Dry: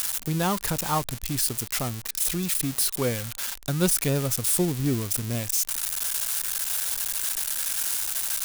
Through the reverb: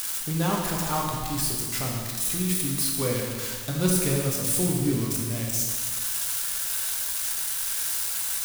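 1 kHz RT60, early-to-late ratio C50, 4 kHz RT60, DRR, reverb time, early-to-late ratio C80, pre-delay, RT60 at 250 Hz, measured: 1.7 s, 1.0 dB, 1.6 s, −2.0 dB, 1.7 s, 3.0 dB, 4 ms, 1.6 s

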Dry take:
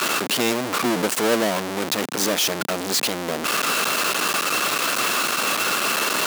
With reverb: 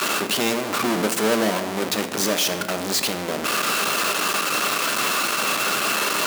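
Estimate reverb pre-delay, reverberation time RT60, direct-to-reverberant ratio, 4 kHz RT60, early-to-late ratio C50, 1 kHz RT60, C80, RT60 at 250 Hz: 5 ms, 1.3 s, 7.0 dB, 0.75 s, 10.5 dB, 1.1 s, 12.0 dB, 1.5 s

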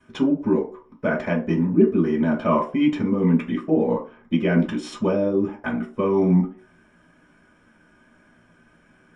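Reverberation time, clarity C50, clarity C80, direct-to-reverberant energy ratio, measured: 0.40 s, 9.0 dB, 14.5 dB, −12.5 dB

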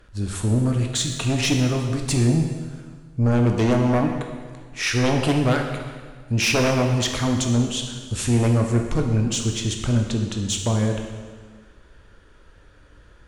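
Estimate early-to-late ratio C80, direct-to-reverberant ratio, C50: 6.0 dB, 2.5 dB, 5.0 dB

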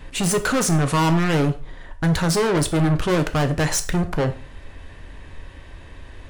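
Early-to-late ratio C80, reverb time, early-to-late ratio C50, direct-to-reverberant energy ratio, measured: 19.0 dB, 0.40 s, 14.5 dB, 8.0 dB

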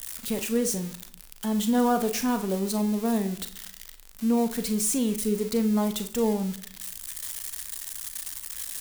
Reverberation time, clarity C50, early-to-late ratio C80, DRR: 0.65 s, 12.5 dB, 17.0 dB, 8.0 dB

